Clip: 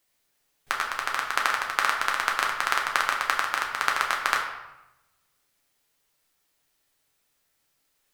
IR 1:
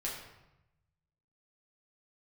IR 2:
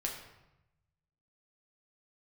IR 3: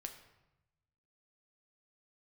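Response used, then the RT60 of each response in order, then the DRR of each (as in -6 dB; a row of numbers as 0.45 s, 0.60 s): 2; 0.90 s, 0.90 s, 0.95 s; -5.5 dB, -1.0 dB, 4.5 dB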